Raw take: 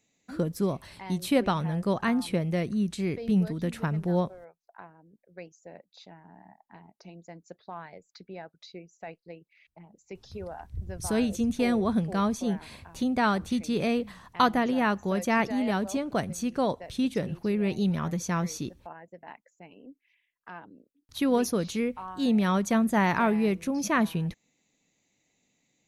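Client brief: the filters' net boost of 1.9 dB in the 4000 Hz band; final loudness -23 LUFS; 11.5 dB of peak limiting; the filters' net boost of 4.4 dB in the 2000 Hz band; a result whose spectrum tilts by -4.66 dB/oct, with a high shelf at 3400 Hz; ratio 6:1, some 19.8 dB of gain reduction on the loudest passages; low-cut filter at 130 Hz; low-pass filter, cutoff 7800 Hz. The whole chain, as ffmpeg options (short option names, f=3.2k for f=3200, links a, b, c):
-af "highpass=130,lowpass=7.8k,equalizer=f=2k:t=o:g=6.5,highshelf=f=3.4k:g=-8,equalizer=f=4k:t=o:g=5.5,acompressor=threshold=-39dB:ratio=6,volume=21dB,alimiter=limit=-11.5dB:level=0:latency=1"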